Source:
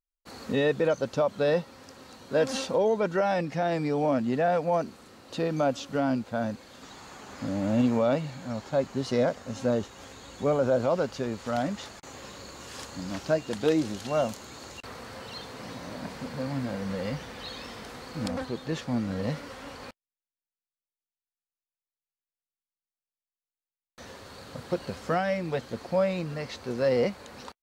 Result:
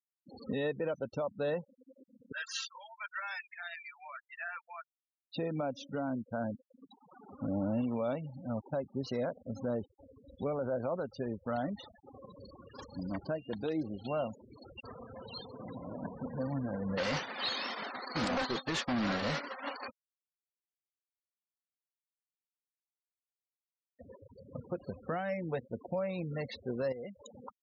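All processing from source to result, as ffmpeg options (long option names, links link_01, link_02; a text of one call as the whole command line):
ffmpeg -i in.wav -filter_complex "[0:a]asettb=1/sr,asplit=3[link_01][link_02][link_03];[link_01]atrim=end=2.324[link_04];[link_02]atrim=start=2.32:end=5.36,asetpts=PTS-STARTPTS,afade=type=in:duration=0.004:curve=qsin,afade=type=out:start_time=3.036:duration=0.004:curve=qsin,highpass=frequency=1300:width=0.5412,highpass=frequency=1300:width=1.3066,asplit=2[link_05][link_06];[link_06]adelay=12,volume=-12dB[link_07];[link_05][link_07]amix=inputs=2:normalize=0,atrim=end_sample=134064[link_08];[link_03]atrim=start=5.356[link_09];[link_04][link_08]acrossfade=duration=0.004:curve1=hsin:curve2=qsin[link_10];[link_10][link_09]acrossfade=duration=0.004:curve1=qsin:curve2=hsin,asettb=1/sr,asplit=3[link_11][link_12][link_13];[link_11]atrim=end=16.974[link_14];[link_12]atrim=start=16.97:end=19.88,asetpts=PTS-STARTPTS,afade=type=in:duration=0.004:curve=qsin,afade=type=out:start_time=2.906:duration=0.004:curve=qsin,agate=range=-33dB:threshold=-33dB:ratio=3:release=100:detection=peak,asplit=2[link_15][link_16];[link_16]highpass=frequency=720:poles=1,volume=30dB,asoftclip=type=tanh:threshold=-15dB[link_17];[link_15][link_17]amix=inputs=2:normalize=0,lowpass=frequency=7400:poles=1,volume=-6dB,bandreject=frequency=480:width=8.2[link_18];[link_13]atrim=start=19.876[link_19];[link_14][link_18]acrossfade=duration=0.004:curve1=hsin:curve2=qsin[link_20];[link_20][link_19]acrossfade=duration=0.004:curve1=qsin:curve2=hsin,asettb=1/sr,asplit=3[link_21][link_22][link_23];[link_21]atrim=end=26.924[link_24];[link_22]atrim=start=26.92:end=27.32,asetpts=PTS-STARTPTS,afade=type=in:duration=0.004:curve=qsin,afade=type=out:start_time=0.396:duration=0.004:curve=qsin,highshelf=frequency=4000:gain=11,aeval=exprs='val(0)*gte(abs(val(0)),0.002)':channel_layout=same,acompressor=threshold=-34dB:ratio=4:attack=3.2:release=140:knee=1:detection=peak[link_25];[link_23]atrim=start=27.316[link_26];[link_24][link_25]acrossfade=duration=0.004:curve1=hsin:curve2=qsin[link_27];[link_27][link_26]acrossfade=duration=0.004:curve1=qsin:curve2=hsin,afftfilt=real='re*gte(hypot(re,im),0.02)':imag='im*gte(hypot(re,im),0.02)':win_size=1024:overlap=0.75,alimiter=limit=-23.5dB:level=0:latency=1:release=336,volume=-2.5dB" out.wav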